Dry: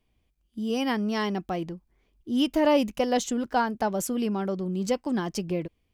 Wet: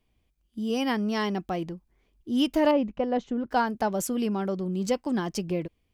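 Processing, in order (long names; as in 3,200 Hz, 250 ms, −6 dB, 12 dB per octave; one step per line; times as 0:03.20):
0:02.71–0:03.51: head-to-tape spacing loss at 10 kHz 40 dB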